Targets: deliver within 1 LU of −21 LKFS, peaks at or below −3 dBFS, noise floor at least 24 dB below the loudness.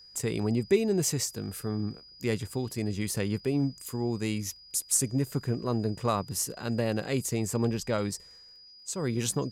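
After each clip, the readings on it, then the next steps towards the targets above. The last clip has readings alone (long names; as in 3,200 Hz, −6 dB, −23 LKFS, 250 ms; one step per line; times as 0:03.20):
crackle rate 15 per second; interfering tone 4,900 Hz; level of the tone −50 dBFS; integrated loudness −30.0 LKFS; sample peak −11.0 dBFS; target loudness −21.0 LKFS
→ click removal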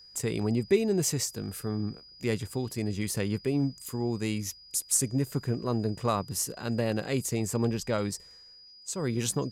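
crackle rate 0 per second; interfering tone 4,900 Hz; level of the tone −50 dBFS
→ notch filter 4,900 Hz, Q 30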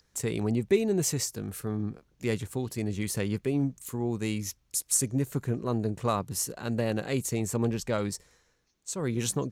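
interfering tone none found; integrated loudness −30.0 LKFS; sample peak −11.0 dBFS; target loudness −21.0 LKFS
→ level +9 dB
brickwall limiter −3 dBFS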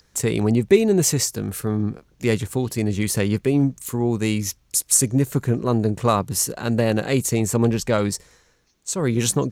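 integrated loudness −21.0 LKFS; sample peak −3.0 dBFS; background noise floor −61 dBFS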